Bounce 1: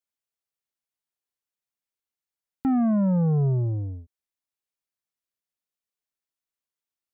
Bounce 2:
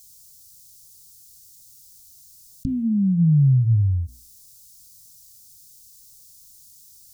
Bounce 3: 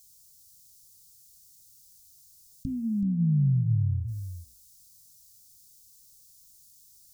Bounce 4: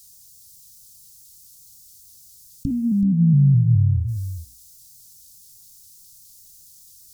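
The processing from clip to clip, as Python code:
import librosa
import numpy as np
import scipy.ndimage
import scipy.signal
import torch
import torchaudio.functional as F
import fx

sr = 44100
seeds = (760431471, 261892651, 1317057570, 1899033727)

y1 = scipy.signal.sosfilt(scipy.signal.cheby2(4, 80, [570.0, 1400.0], 'bandstop', fs=sr, output='sos'), x)
y1 = fx.hum_notches(y1, sr, base_hz=60, count=7)
y1 = fx.env_flatten(y1, sr, amount_pct=50)
y1 = y1 * 10.0 ** (8.0 / 20.0)
y2 = y1 + 10.0 ** (-9.5 / 20.0) * np.pad(y1, (int(377 * sr / 1000.0), 0))[:len(y1)]
y2 = y2 * 10.0 ** (-7.5 / 20.0)
y3 = fx.vibrato_shape(y2, sr, shape='saw_up', rate_hz=4.8, depth_cents=100.0)
y3 = y3 * 10.0 ** (8.5 / 20.0)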